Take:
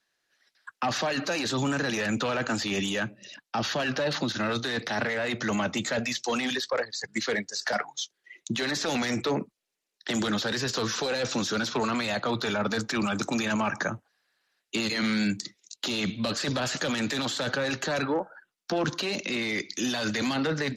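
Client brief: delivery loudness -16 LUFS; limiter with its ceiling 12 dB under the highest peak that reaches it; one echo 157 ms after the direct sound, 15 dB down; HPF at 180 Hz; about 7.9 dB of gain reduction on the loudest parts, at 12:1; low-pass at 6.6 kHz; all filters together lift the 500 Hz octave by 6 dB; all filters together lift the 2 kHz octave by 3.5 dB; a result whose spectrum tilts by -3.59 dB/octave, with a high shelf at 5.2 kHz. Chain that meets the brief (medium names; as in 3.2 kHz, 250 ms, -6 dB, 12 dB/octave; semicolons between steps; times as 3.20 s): high-pass 180 Hz; low-pass 6.6 kHz; peaking EQ 500 Hz +7 dB; peaking EQ 2 kHz +5 dB; treble shelf 5.2 kHz -6.5 dB; compression 12:1, threshold -26 dBFS; peak limiter -26.5 dBFS; delay 157 ms -15 dB; trim +19 dB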